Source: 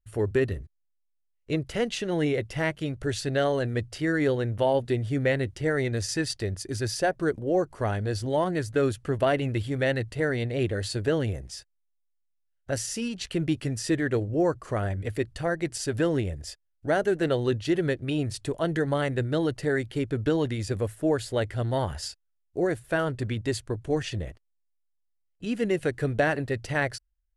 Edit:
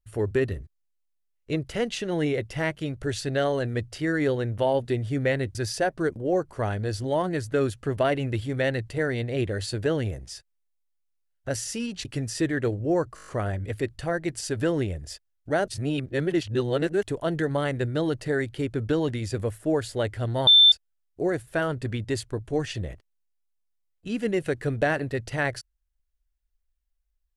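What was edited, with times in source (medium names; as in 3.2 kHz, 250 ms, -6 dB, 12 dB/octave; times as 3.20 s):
5.55–6.77 s: delete
13.27–13.54 s: delete
14.64 s: stutter 0.02 s, 7 plays
17.05–18.40 s: reverse
21.84–22.09 s: bleep 3.55 kHz -11 dBFS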